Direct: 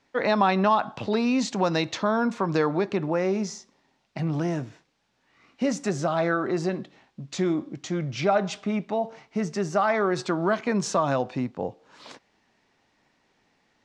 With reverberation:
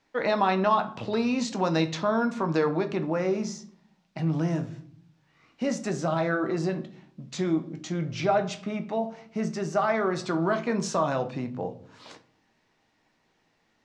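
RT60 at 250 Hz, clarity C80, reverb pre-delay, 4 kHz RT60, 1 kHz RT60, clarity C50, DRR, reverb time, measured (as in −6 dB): 0.95 s, 20.0 dB, 6 ms, 0.30 s, 0.45 s, 15.0 dB, 7.0 dB, 0.55 s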